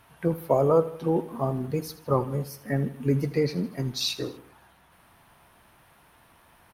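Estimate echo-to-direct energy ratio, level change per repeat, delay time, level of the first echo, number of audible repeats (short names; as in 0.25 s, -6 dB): -14.5 dB, -5.5 dB, 80 ms, -16.0 dB, 3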